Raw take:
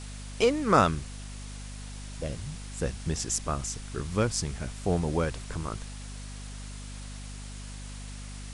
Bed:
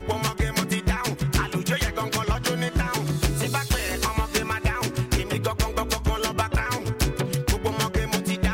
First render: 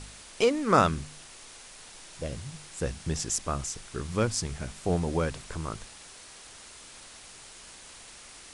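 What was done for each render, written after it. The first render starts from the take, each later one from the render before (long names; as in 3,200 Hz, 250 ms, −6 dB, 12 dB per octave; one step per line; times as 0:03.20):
hum removal 50 Hz, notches 5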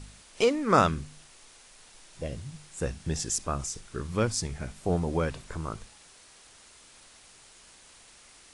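noise reduction from a noise print 6 dB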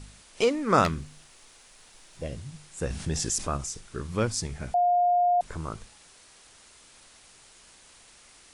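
0:00.84–0:02.22: phase distortion by the signal itself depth 0.19 ms
0:02.90–0:03.57: envelope flattener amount 50%
0:04.74–0:05.41: beep over 709 Hz −19 dBFS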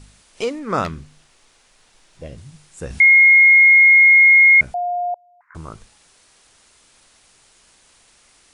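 0:00.59–0:02.38: high-shelf EQ 7,600 Hz −7.5 dB
0:03.00–0:04.61: beep over 2,150 Hz −6.5 dBFS
0:05.14–0:05.55: elliptic band-pass filter 1,000–2,000 Hz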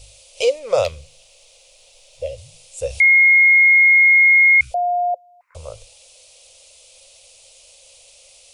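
0:03.99–0:04.68: healed spectral selection 360–1,100 Hz before
drawn EQ curve 110 Hz 0 dB, 180 Hz −21 dB, 350 Hz −20 dB, 530 Hz +15 dB, 820 Hz −3 dB, 1,700 Hz −15 dB, 2,500 Hz +7 dB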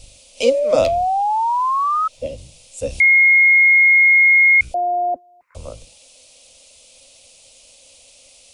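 sub-octave generator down 1 octave, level −2 dB
0:00.45–0:02.08: sound drawn into the spectrogram rise 530–1,300 Hz −18 dBFS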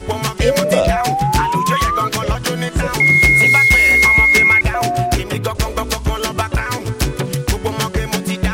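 mix in bed +5.5 dB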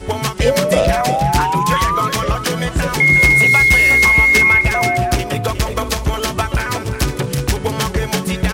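single-tap delay 362 ms −9.5 dB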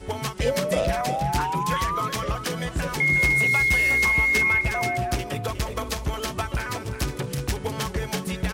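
level −9.5 dB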